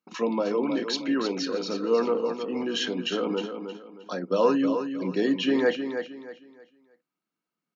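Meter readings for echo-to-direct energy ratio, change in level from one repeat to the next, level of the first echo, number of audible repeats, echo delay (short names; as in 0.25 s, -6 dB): -7.5 dB, -10.5 dB, -8.0 dB, 3, 0.313 s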